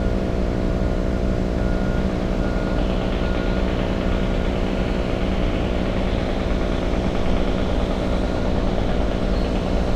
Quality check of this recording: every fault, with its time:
buzz 60 Hz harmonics 11 -26 dBFS

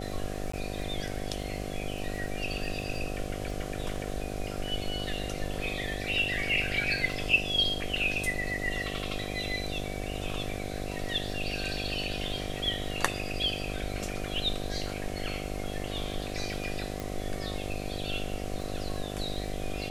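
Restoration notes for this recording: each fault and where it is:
buzz 50 Hz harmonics 15 -37 dBFS
crackle 11/s -39 dBFS
0.52–0.53 gap 14 ms
17 pop

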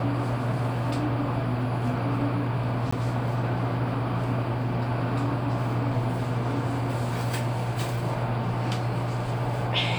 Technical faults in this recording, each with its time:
2.91–2.92 gap

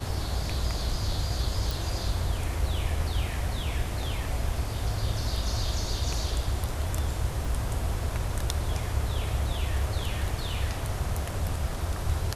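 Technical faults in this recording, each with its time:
1.71 pop
7.45 gap 2.3 ms

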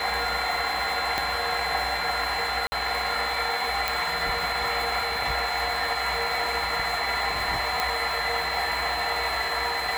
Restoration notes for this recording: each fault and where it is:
tone 4100 Hz -32 dBFS
1.18 pop -10 dBFS
2.67–2.72 gap 50 ms
3.88 pop
7.8 pop

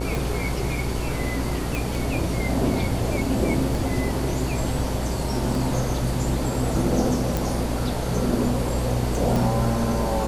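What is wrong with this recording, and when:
buzz 60 Hz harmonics 17 -28 dBFS
tick 33 1/3 rpm
1.75 pop
7.37 pop
9.36 pop

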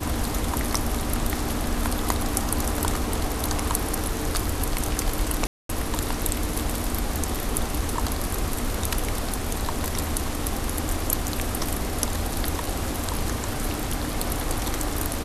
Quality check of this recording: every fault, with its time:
5.47–5.69 gap 0.223 s

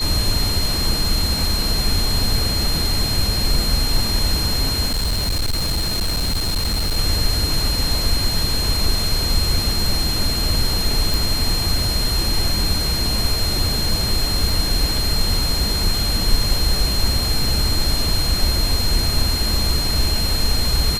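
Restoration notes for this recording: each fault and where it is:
tone 4200 Hz -22 dBFS
4.86–6.97 clipped -16.5 dBFS
11.14 pop
14.5 gap 2.7 ms

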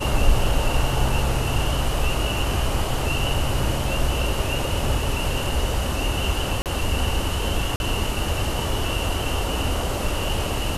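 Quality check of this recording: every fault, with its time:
6.62–6.66 gap 38 ms
7.76–7.8 gap 41 ms

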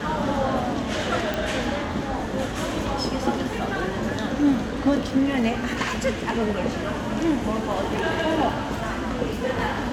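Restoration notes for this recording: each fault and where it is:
1.34 pop

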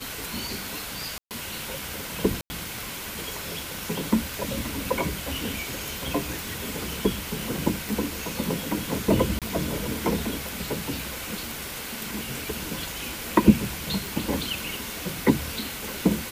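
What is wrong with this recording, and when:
1.18–1.31 gap 0.128 s
2.41–2.5 gap 90 ms
7.89 pop
9.39–9.42 gap 27 ms
14.06 pop

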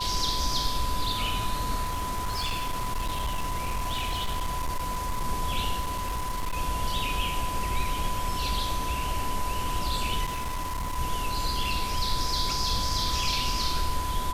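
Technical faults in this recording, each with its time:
tone 1000 Hz -31 dBFS
1.83–5.25 clipped -25 dBFS
5.8–6.58 clipped -26 dBFS
10.24–10.99 clipped -27.5 dBFS

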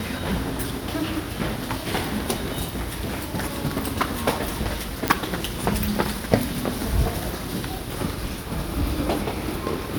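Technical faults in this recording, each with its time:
2.66–3.35 clipped -23.5 dBFS
5.08 pop -4 dBFS

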